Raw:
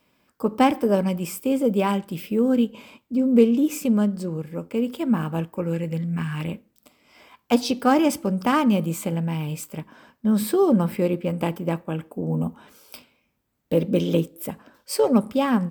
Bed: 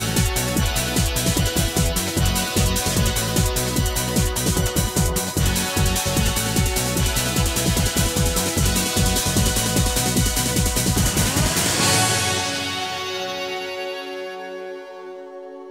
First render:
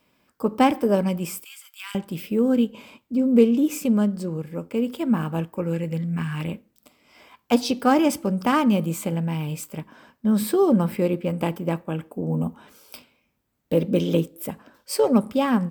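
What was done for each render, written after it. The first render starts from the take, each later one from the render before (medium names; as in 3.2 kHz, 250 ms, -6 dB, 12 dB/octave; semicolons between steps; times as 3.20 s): 1.44–1.95 s: Bessel high-pass 2.3 kHz, order 8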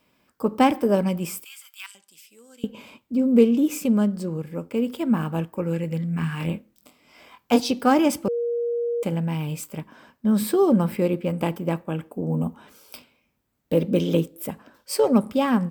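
1.86–2.64 s: band-pass filter 7.6 kHz, Q 1.6; 6.20–7.60 s: doubling 24 ms -5 dB; 8.28–9.03 s: bleep 473 Hz -22 dBFS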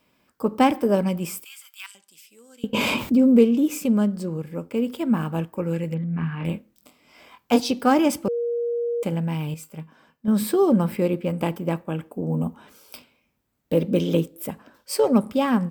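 2.73–3.39 s: level flattener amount 70%; 5.94–6.45 s: distance through air 400 m; 9.54–10.28 s: feedback comb 160 Hz, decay 0.19 s, harmonics odd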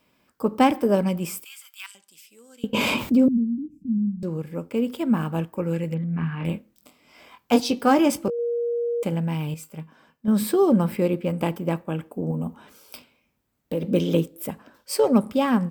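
3.28–4.23 s: inverse Chebyshev low-pass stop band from 550 Hz, stop band 50 dB; 7.69–8.39 s: doubling 18 ms -12 dB; 12.31–13.83 s: compression 2:1, threshold -26 dBFS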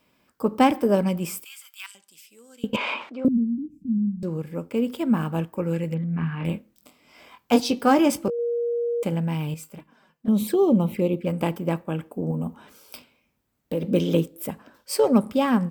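2.76–3.25 s: band-pass 790–2400 Hz; 9.76–11.27 s: touch-sensitive flanger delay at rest 6.5 ms, full sweep at -19.5 dBFS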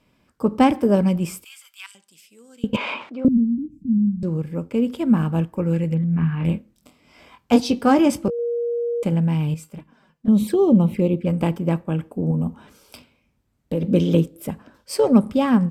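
Bessel low-pass 11 kHz, order 4; bass shelf 180 Hz +11.5 dB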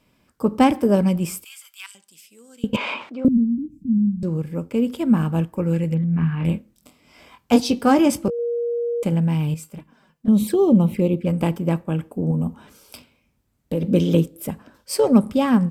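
treble shelf 6.8 kHz +6.5 dB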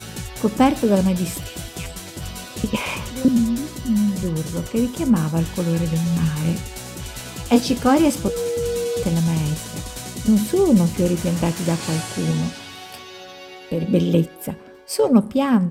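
add bed -12 dB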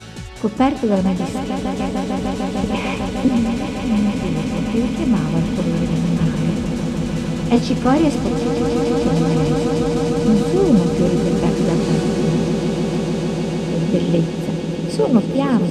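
distance through air 77 m; echo with a slow build-up 150 ms, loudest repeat 8, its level -11.5 dB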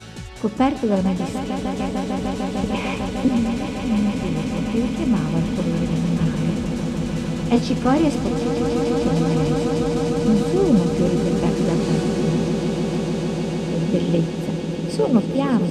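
trim -2.5 dB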